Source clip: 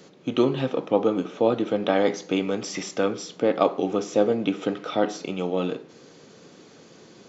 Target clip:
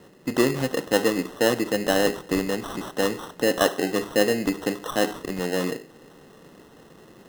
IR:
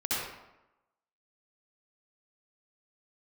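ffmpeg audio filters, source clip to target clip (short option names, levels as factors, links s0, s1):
-af "acrusher=samples=19:mix=1:aa=0.000001"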